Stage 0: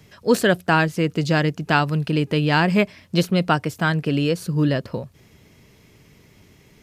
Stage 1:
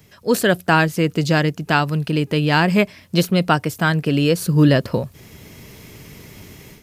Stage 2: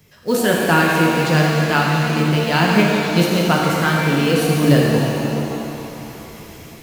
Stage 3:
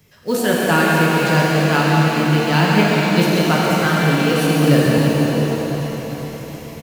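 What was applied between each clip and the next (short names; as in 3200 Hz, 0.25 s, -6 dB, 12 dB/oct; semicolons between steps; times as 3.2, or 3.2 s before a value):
high shelf 11000 Hz +11.5 dB; AGC gain up to 12 dB; gain -1 dB
companded quantiser 6-bit; shimmer reverb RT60 3 s, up +7 st, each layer -8 dB, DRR -3 dB; gain -3 dB
feedback echo 0.414 s, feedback 53%, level -12 dB; on a send at -3 dB: reverb RT60 3.0 s, pre-delay 0.116 s; on the sum: gain -1.5 dB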